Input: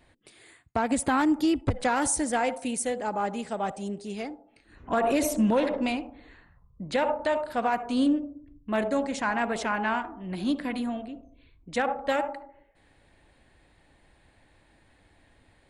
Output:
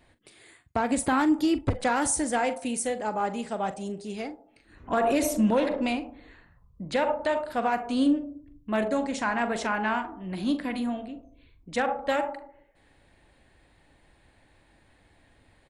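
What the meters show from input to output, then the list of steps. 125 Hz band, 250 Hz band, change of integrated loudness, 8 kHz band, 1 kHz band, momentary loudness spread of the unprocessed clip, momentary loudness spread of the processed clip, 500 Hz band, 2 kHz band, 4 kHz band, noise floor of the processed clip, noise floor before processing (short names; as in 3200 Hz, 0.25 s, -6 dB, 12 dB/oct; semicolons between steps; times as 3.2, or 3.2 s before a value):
0.0 dB, +0.5 dB, +0.5 dB, 0.0 dB, 0.0 dB, 12 LU, 12 LU, +0.5 dB, 0.0 dB, 0.0 dB, -62 dBFS, -63 dBFS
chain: doubler 42 ms -13 dB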